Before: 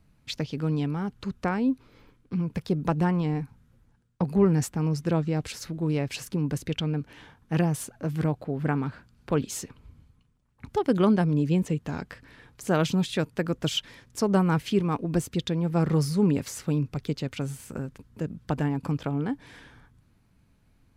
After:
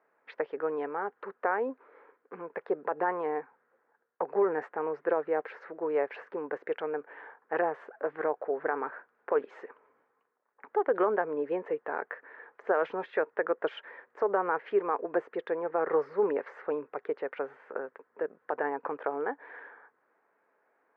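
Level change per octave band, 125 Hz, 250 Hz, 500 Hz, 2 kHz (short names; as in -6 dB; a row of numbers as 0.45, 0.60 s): under -30 dB, -14.5 dB, +1.5 dB, +1.5 dB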